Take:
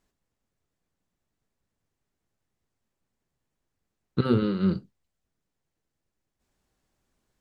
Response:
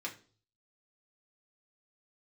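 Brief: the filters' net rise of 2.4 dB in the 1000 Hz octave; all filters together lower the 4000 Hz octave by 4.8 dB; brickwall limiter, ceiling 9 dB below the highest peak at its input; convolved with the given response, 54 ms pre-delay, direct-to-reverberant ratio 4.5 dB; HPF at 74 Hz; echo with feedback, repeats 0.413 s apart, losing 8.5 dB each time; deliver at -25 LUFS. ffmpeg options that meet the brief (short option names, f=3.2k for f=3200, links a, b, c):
-filter_complex "[0:a]highpass=74,equalizer=f=1k:t=o:g=4,equalizer=f=4k:t=o:g=-6.5,alimiter=limit=-19dB:level=0:latency=1,aecho=1:1:413|826|1239|1652:0.376|0.143|0.0543|0.0206,asplit=2[a][b];[1:a]atrim=start_sample=2205,adelay=54[c];[b][c]afir=irnorm=-1:irlink=0,volume=-5.5dB[d];[a][d]amix=inputs=2:normalize=0,volume=5dB"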